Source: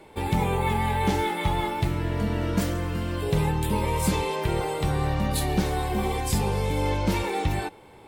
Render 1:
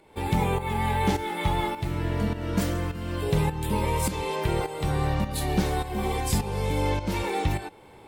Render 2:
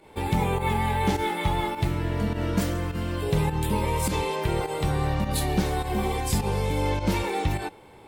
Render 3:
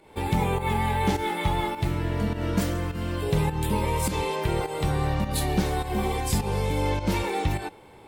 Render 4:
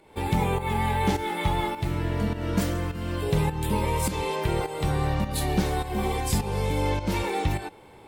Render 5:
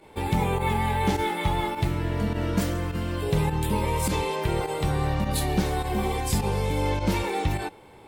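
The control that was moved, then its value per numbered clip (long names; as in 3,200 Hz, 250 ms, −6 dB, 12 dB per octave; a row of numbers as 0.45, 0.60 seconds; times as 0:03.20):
fake sidechain pumping, release: 424, 99, 173, 288, 61 milliseconds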